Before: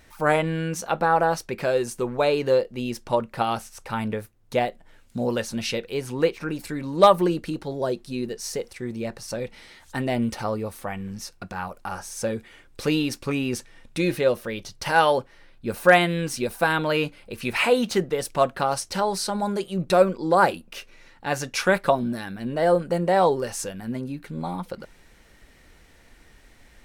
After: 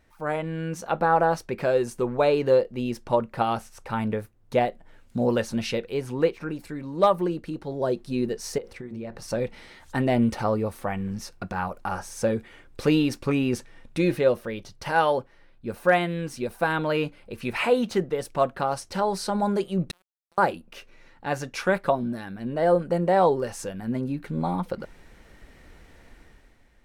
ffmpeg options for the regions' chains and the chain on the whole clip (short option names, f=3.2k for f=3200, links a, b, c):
-filter_complex "[0:a]asettb=1/sr,asplit=3[a][b][c];[a]atrim=end=8.584[d];[b]atrim=start=8.58:end=9.22,asetpts=PTS-STARTPTS,afade=t=in:d=0.004:c=qsin,afade=t=out:st=0.636:d=0.004:c=qsin,acompressor=threshold=-35dB:ratio=6:attack=3.2:release=140:knee=1:detection=peak,equalizer=f=9.8k:t=o:w=1.8:g=-7,bandreject=f=60:t=h:w=6,bandreject=f=120:t=h:w=6,bandreject=f=180:t=h:w=6,bandreject=f=240:t=h:w=6,bandreject=f=300:t=h:w=6,bandreject=f=360:t=h:w=6,bandreject=f=420:t=h:w=6,bandreject=f=480:t=h:w=6,bandreject=f=540:t=h:w=6[e];[c]atrim=start=9.216[f];[d][e]acrossfade=d=0.004:c1=hsin:c2=qsin[g];[g][f]acrossfade=d=0.004:c1=qsin:c2=hsin,asettb=1/sr,asplit=3[h][i][j];[h]atrim=end=19.914[k];[i]atrim=start=19.91:end=20.38,asetpts=PTS-STARTPTS,afade=t=in:d=0.004:c=qsin,afade=t=out:st=0.466:d=0.004:c=qsin,aderivative,acompressor=threshold=-43dB:ratio=6:attack=3.2:release=140:knee=1:detection=peak,aeval=exprs='sgn(val(0))*max(abs(val(0))-0.00944,0)':c=same[l];[j]atrim=start=20.376[m];[k][l]acrossfade=d=0.004:c1=hsin:c2=qsin[n];[n][m]acrossfade=d=0.004:c1=qsin:c2=hsin,highshelf=f=2.4k:g=-8,dynaudnorm=f=110:g=11:m=11.5dB,volume=-7.5dB"